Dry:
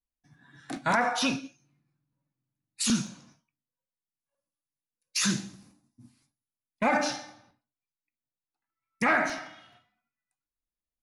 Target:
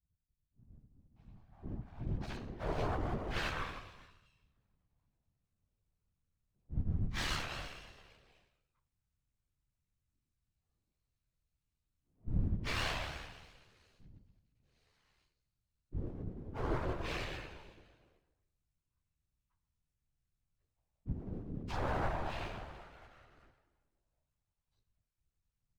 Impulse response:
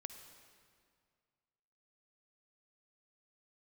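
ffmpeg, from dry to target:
-filter_complex "[0:a]alimiter=limit=-21dB:level=0:latency=1:release=77,lowshelf=f=79:g=9.5,afftfilt=real='hypot(re,im)*cos(PI*b)':imag='0':win_size=1024:overlap=0.75,asetrate=18846,aresample=44100,acrossover=split=210|3800[a][b][c];[b]adelay=610[d];[c]adelay=650[e];[a][d][e]amix=inputs=3:normalize=0,aeval=exprs='max(val(0),0)':c=same,asplit=3[f][g][h];[g]asetrate=52444,aresample=44100,atempo=0.840896,volume=-6dB[i];[h]asetrate=66075,aresample=44100,atempo=0.66742,volume=-8dB[j];[f][i][j]amix=inputs=3:normalize=0,afftfilt=real='hypot(re,im)*cos(2*PI*random(0))':imag='hypot(re,im)*sin(2*PI*random(1))':win_size=512:overlap=0.75,adynamicequalizer=threshold=0.00112:dfrequency=2600:dqfactor=0.7:tfrequency=2600:tqfactor=0.7:attack=5:release=100:ratio=0.375:range=1.5:mode=cutabove:tftype=highshelf,volume=6.5dB"

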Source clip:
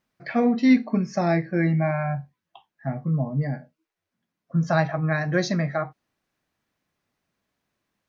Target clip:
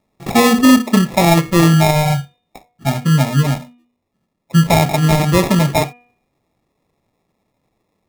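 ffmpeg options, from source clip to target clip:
-af "acrusher=samples=29:mix=1:aa=0.000001,bandreject=f=242.6:t=h:w=4,bandreject=f=485.2:t=h:w=4,bandreject=f=727.8:t=h:w=4,bandreject=f=970.4:t=h:w=4,bandreject=f=1.213k:t=h:w=4,bandreject=f=1.4556k:t=h:w=4,bandreject=f=1.6982k:t=h:w=4,bandreject=f=1.9408k:t=h:w=4,bandreject=f=2.1834k:t=h:w=4,bandreject=f=2.426k:t=h:w=4,bandreject=f=2.6686k:t=h:w=4,bandreject=f=2.9112k:t=h:w=4,bandreject=f=3.1538k:t=h:w=4,bandreject=f=3.3964k:t=h:w=4,bandreject=f=3.639k:t=h:w=4,alimiter=level_in=12dB:limit=-1dB:release=50:level=0:latency=1,volume=-1dB"

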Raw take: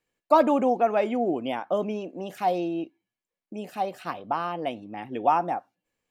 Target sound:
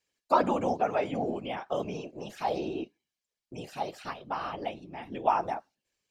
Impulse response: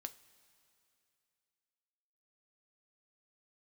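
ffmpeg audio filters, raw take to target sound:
-filter_complex "[0:a]acrossover=split=2700[a][b];[b]acompressor=threshold=-52dB:ratio=4:attack=1:release=60[c];[a][c]amix=inputs=2:normalize=0,equalizer=f=5.2k:t=o:w=1.8:g=13,afftfilt=real='hypot(re,im)*cos(2*PI*random(0))':imag='hypot(re,im)*sin(2*PI*random(1))':win_size=512:overlap=0.75"

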